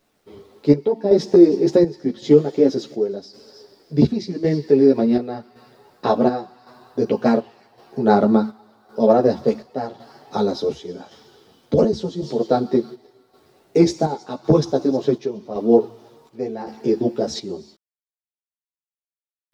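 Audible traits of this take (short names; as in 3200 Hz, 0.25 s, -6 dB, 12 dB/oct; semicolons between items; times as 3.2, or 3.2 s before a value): a quantiser's noise floor 12-bit, dither none; chopped level 0.9 Hz, depth 60%, duty 65%; a shimmering, thickened sound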